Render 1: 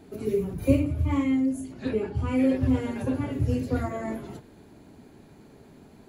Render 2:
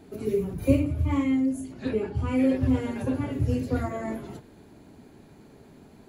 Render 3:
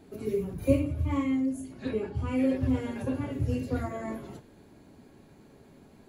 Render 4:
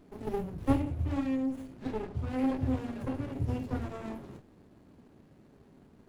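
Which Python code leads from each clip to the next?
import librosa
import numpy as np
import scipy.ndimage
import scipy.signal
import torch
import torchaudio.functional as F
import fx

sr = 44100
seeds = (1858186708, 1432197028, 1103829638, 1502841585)

y1 = x
y2 = fx.comb_fb(y1, sr, f0_hz=550.0, decay_s=0.44, harmonics='all', damping=0.0, mix_pct=70)
y2 = F.gain(torch.from_numpy(y2), 6.5).numpy()
y3 = fx.running_max(y2, sr, window=33)
y3 = F.gain(torch.from_numpy(y3), -2.5).numpy()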